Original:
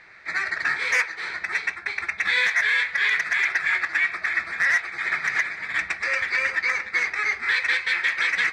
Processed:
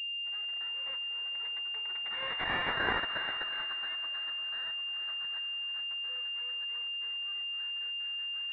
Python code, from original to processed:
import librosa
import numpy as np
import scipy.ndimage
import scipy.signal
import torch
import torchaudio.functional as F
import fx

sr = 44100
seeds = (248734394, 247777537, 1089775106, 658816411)

y = fx.doppler_pass(x, sr, speed_mps=22, closest_m=1.3, pass_at_s=2.71)
y = scipy.signal.sosfilt(scipy.signal.butter(4, 140.0, 'highpass', fs=sr, output='sos'), y)
y = fx.peak_eq(y, sr, hz=940.0, db=13.0, octaves=2.9)
y = fx.over_compress(y, sr, threshold_db=-22.0, ratio=-1.0)
y = fx.echo_feedback(y, sr, ms=444, feedback_pct=40, wet_db=-14)
y = fx.pwm(y, sr, carrier_hz=2800.0)